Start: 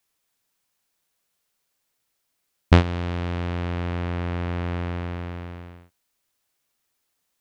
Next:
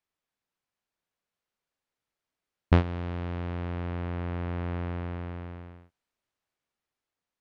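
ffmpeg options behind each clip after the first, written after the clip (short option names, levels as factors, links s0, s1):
-af "aemphasis=mode=reproduction:type=75fm,dynaudnorm=f=690:g=5:m=1.58,volume=0.398"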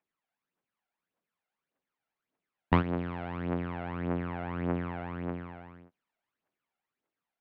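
-filter_complex "[0:a]lowshelf=f=190:g=4.5,aphaser=in_gain=1:out_gain=1:delay=1.5:decay=0.62:speed=1.7:type=triangular,acrossover=split=170 3200:gain=0.0794 1 0.112[s0][s1][s2];[s0][s1][s2]amix=inputs=3:normalize=0"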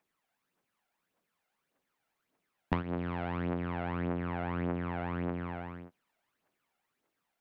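-af "acompressor=threshold=0.0126:ratio=4,volume=2.24"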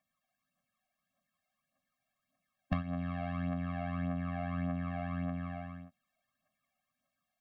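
-af "afftfilt=real='re*eq(mod(floor(b*sr/1024/260),2),0)':imag='im*eq(mod(floor(b*sr/1024/260),2),0)':win_size=1024:overlap=0.75"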